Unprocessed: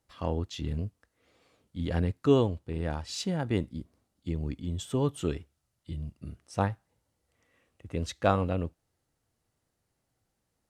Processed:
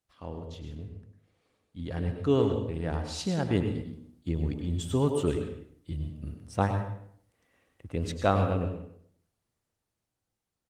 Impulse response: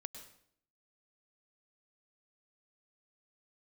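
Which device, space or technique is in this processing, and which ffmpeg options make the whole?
speakerphone in a meeting room: -filter_complex "[1:a]atrim=start_sample=2205[link_01];[0:a][link_01]afir=irnorm=-1:irlink=0,asplit=2[link_02][link_03];[link_03]adelay=100,highpass=300,lowpass=3400,asoftclip=type=hard:threshold=-23.5dB,volume=-10dB[link_04];[link_02][link_04]amix=inputs=2:normalize=0,dynaudnorm=framelen=550:gausssize=9:maxgain=11dB,volume=-4dB" -ar 48000 -c:a libopus -b:a 24k

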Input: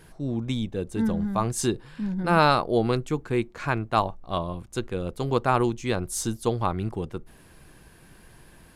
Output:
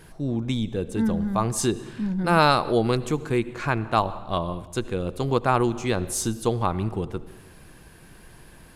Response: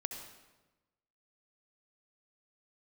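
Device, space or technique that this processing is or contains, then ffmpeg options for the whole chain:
ducked reverb: -filter_complex "[0:a]asettb=1/sr,asplit=3[link_01][link_02][link_03];[link_01]atrim=end=2.214[link_04];[link_02]atrim=start=2.21:end=3.39,asetpts=PTS-STARTPTS,afade=type=in:duration=0.004:curve=qsin,afade=type=out:start_time=1.176:duration=0.004:curve=qsin,highshelf=frequency=4700:gain=5.5[link_05];[link_03]atrim=start=3.386[link_06];[link_04][link_05]acrossfade=duration=0.004:curve1=hsin:curve2=qsin[link_07];[link_07][link_06]acrossfade=duration=0.004:curve1=qsin:curve2=hsin,asplit=3[link_08][link_09][link_10];[1:a]atrim=start_sample=2205[link_11];[link_09][link_11]afir=irnorm=-1:irlink=0[link_12];[link_10]apad=whole_len=386157[link_13];[link_12][link_13]sidechaincompress=threshold=-29dB:ratio=8:attack=34:release=128,volume=-6.5dB[link_14];[link_08][link_14]amix=inputs=2:normalize=0"

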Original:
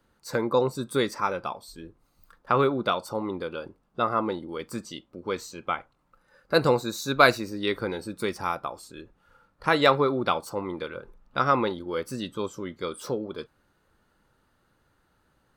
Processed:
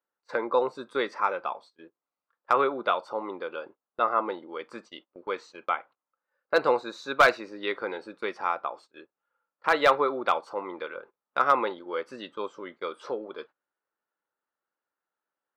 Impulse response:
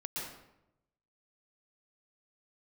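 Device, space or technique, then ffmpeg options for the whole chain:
walkie-talkie: -af "highpass=490,lowpass=2600,asoftclip=type=hard:threshold=-12dB,agate=range=-20dB:threshold=-49dB:ratio=16:detection=peak,volume=1.5dB"

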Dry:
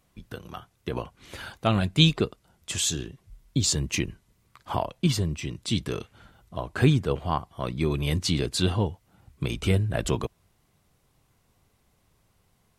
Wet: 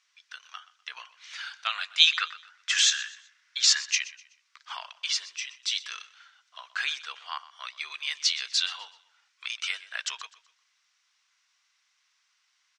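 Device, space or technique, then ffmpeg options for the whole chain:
headphones lying on a table: -filter_complex "[0:a]highpass=frequency=1400:width=0.5412,highpass=frequency=1400:width=1.3066,lowpass=frequency=6300:width=0.5412,lowpass=frequency=6300:width=1.3066,equalizer=frequency=5700:width_type=o:width=0.4:gain=5.5,asettb=1/sr,asplit=3[link_01][link_02][link_03];[link_01]atrim=end=2.074[link_04];[link_02]atrim=start=2.07:end=3.87,asetpts=PTS-STARTPTS,afade=type=in:duration=0.004:curve=qsin,afade=type=out:start_time=1.796:duration=0.004:curve=qsin,equalizer=frequency=1600:width_type=o:width=1.3:gain=13[link_05];[link_03]atrim=start=3.866[link_06];[link_04][link_05]acrossfade=duration=0.004:curve1=hsin:curve2=qsin[link_07];[link_07][link_06]acrossfade=duration=0.004:curve1=qsin:curve2=hsin,aecho=1:1:125|250|375:0.126|0.0428|0.0146,volume=3.5dB"

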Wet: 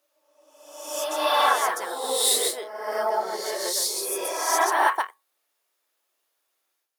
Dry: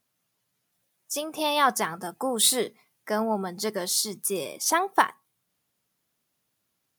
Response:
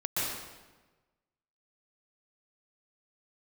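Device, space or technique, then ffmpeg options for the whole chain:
ghost voice: -filter_complex "[0:a]areverse[link_01];[1:a]atrim=start_sample=2205[link_02];[link_01][link_02]afir=irnorm=-1:irlink=0,areverse,highpass=frequency=420:width=0.5412,highpass=frequency=420:width=1.3066,volume=-5dB"

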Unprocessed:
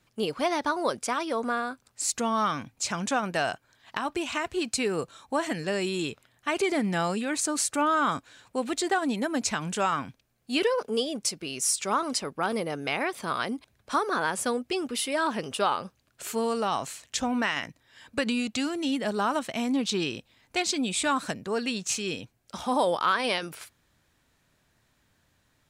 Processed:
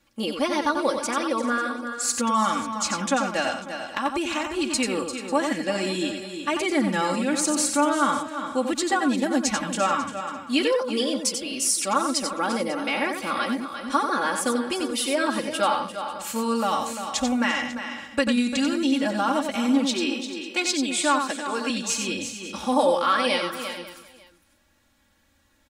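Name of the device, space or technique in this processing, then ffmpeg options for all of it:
ducked delay: -filter_complex "[0:a]asettb=1/sr,asplit=3[link_01][link_02][link_03];[link_01]atrim=end=19.874[link_04];[link_02]atrim=start=19.87:end=21.7,asetpts=PTS-STARTPTS,afade=type=in:duration=0.004:curve=qsin,afade=type=out:start_time=1.826:duration=0.004:curve=qsin,highpass=frequency=260:width=0.5412,highpass=frequency=260:width=1.3066[link_05];[link_03]atrim=start=21.696[link_06];[link_04][link_05]acrossfade=duration=0.004:curve1=hsin:curve2=qsin[link_07];[link_07][link_06]acrossfade=duration=0.004:curve1=qsin:curve2=hsin,aecho=1:1:3.6:0.95,asplit=3[link_08][link_09][link_10];[link_09]adelay=346,volume=-8dB[link_11];[link_10]apad=whole_len=1148408[link_12];[link_11][link_12]sidechaincompress=threshold=-25dB:ratio=8:attack=8.7:release=567[link_13];[link_08][link_13]amix=inputs=2:normalize=0,aecho=1:1:91|392|545:0.473|0.106|0.119"

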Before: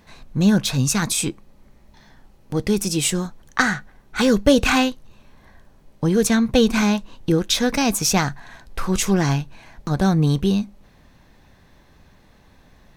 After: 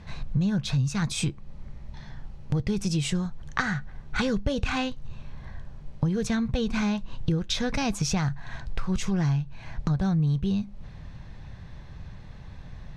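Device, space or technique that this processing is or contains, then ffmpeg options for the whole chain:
jukebox: -af "lowpass=5600,lowshelf=frequency=190:width_type=q:width=1.5:gain=9,acompressor=threshold=-27dB:ratio=5,volume=2.5dB"

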